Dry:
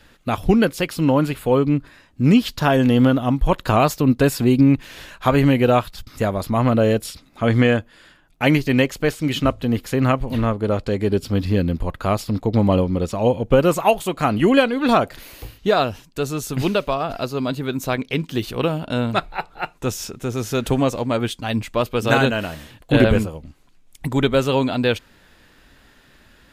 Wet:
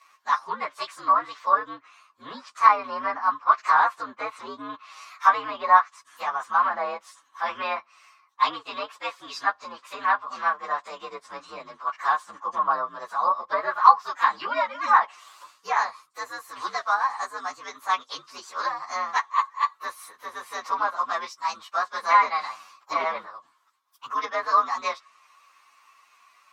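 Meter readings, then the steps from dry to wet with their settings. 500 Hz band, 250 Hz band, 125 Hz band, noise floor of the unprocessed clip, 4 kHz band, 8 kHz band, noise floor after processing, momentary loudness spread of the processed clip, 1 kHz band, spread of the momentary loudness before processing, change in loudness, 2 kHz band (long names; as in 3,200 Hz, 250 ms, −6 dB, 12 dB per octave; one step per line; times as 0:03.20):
−16.0 dB, −30.0 dB, below −40 dB, −53 dBFS, −9.5 dB, below −10 dB, −63 dBFS, 19 LU, +4.0 dB, 10 LU, −5.0 dB, −2.5 dB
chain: partials spread apart or drawn together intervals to 119%
treble cut that deepens with the level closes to 2,400 Hz, closed at −14 dBFS
high-pass with resonance 1,100 Hz, resonance Q 12
level −4 dB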